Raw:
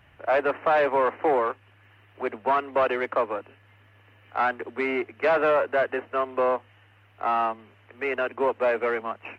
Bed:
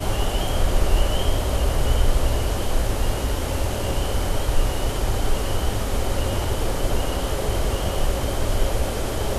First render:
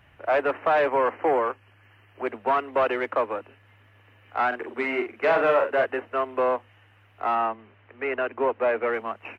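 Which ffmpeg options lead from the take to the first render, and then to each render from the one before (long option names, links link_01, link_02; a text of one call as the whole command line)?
ffmpeg -i in.wav -filter_complex "[0:a]asettb=1/sr,asplit=3[link_01][link_02][link_03];[link_01]atrim=end=0.884[link_04];[link_02]atrim=start=0.88:end=2.27,asetpts=PTS-STARTPTS,afade=type=in:duration=0.004:curve=qsin,afade=type=out:start_time=1.386:duration=0.004:curve=qsin,asuperstop=centerf=3700:order=12:qfactor=5.2[link_05];[link_03]atrim=start=2.266[link_06];[link_04][link_05]acrossfade=duration=0.004:curve1=hsin:curve2=qsin[link_07];[link_07][link_06]acrossfade=duration=0.004:curve1=qsin:curve2=hsin,asplit=3[link_08][link_09][link_10];[link_08]afade=type=out:start_time=4.51:duration=0.02[link_11];[link_09]asplit=2[link_12][link_13];[link_13]adelay=44,volume=-6dB[link_14];[link_12][link_14]amix=inputs=2:normalize=0,afade=type=in:start_time=4.51:duration=0.02,afade=type=out:start_time=5.84:duration=0.02[link_15];[link_10]afade=type=in:start_time=5.84:duration=0.02[link_16];[link_11][link_15][link_16]amix=inputs=3:normalize=0,asettb=1/sr,asplit=3[link_17][link_18][link_19];[link_17]atrim=end=7.354[link_20];[link_18]atrim=start=7.35:end=8.94,asetpts=PTS-STARTPTS,afade=type=in:duration=0.004:curve=qsin,afade=type=out:start_time=1.586:duration=0.004:curve=qsin,lowpass=3000[link_21];[link_19]atrim=start=8.936[link_22];[link_20][link_21]acrossfade=duration=0.004:curve1=hsin:curve2=qsin[link_23];[link_23][link_22]acrossfade=duration=0.004:curve1=qsin:curve2=hsin" out.wav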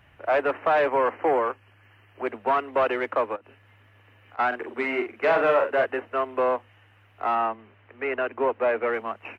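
ffmpeg -i in.wav -filter_complex "[0:a]asplit=3[link_01][link_02][link_03];[link_01]afade=type=out:start_time=3.35:duration=0.02[link_04];[link_02]acompressor=threshold=-44dB:ratio=8:attack=3.2:release=140:knee=1:detection=peak,afade=type=in:start_time=3.35:duration=0.02,afade=type=out:start_time=4.38:duration=0.02[link_05];[link_03]afade=type=in:start_time=4.38:duration=0.02[link_06];[link_04][link_05][link_06]amix=inputs=3:normalize=0" out.wav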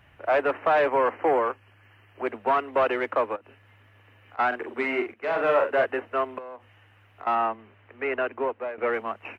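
ffmpeg -i in.wav -filter_complex "[0:a]asettb=1/sr,asplit=3[link_01][link_02][link_03];[link_01]atrim=end=6.384[link_04];[link_02]atrim=start=6.38:end=7.27,asetpts=PTS-STARTPTS,afade=type=in:duration=0.004:curve=qsin,afade=type=out:start_time=0.886:duration=0.004:curve=qsin,acompressor=threshold=-36dB:ratio=20:attack=3.2:release=140:knee=1:detection=peak[link_05];[link_03]atrim=start=7.266[link_06];[link_04][link_05]acrossfade=duration=0.004:curve1=hsin:curve2=qsin[link_07];[link_07][link_06]acrossfade=duration=0.004:curve1=qsin:curve2=hsin,asplit=3[link_08][link_09][link_10];[link_08]atrim=end=5.14,asetpts=PTS-STARTPTS,afade=type=out:start_time=5.136:duration=0.004:curve=hsin:silence=0.211349[link_11];[link_09]atrim=start=5.14:end=8.78,asetpts=PTS-STARTPTS,afade=type=in:duration=0.45:silence=0.211349,afade=type=out:start_time=3.1:duration=0.54:silence=0.16788[link_12];[link_10]atrim=start=8.78,asetpts=PTS-STARTPTS,afade=type=in:duration=0.004:curve=hsin:silence=0.16788[link_13];[link_11][link_12][link_13]concat=n=3:v=0:a=1" out.wav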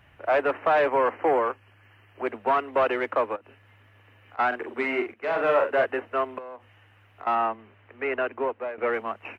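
ffmpeg -i in.wav -af anull out.wav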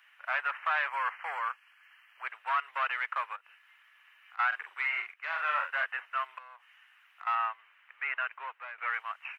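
ffmpeg -i in.wav -filter_complex "[0:a]highpass=frequency=1200:width=0.5412,highpass=frequency=1200:width=1.3066,acrossover=split=3500[link_01][link_02];[link_02]acompressor=threshold=-55dB:ratio=4:attack=1:release=60[link_03];[link_01][link_03]amix=inputs=2:normalize=0" out.wav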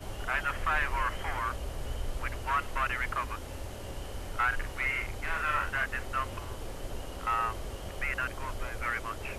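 ffmpeg -i in.wav -i bed.wav -filter_complex "[1:a]volume=-16.5dB[link_01];[0:a][link_01]amix=inputs=2:normalize=0" out.wav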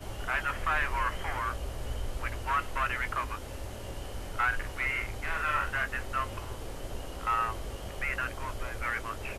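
ffmpeg -i in.wav -filter_complex "[0:a]asplit=2[link_01][link_02];[link_02]adelay=18,volume=-12dB[link_03];[link_01][link_03]amix=inputs=2:normalize=0" out.wav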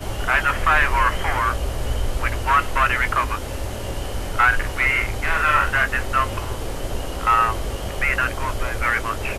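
ffmpeg -i in.wav -af "volume=12dB" out.wav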